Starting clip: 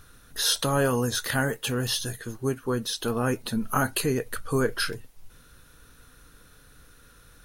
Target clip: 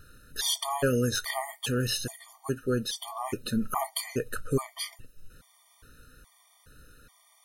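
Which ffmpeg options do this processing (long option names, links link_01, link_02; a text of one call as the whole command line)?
ffmpeg -i in.wav -af "afftfilt=real='re*gt(sin(2*PI*1.2*pts/sr)*(1-2*mod(floor(b*sr/1024/610),2)),0)':imag='im*gt(sin(2*PI*1.2*pts/sr)*(1-2*mod(floor(b*sr/1024/610),2)),0)':win_size=1024:overlap=0.75" out.wav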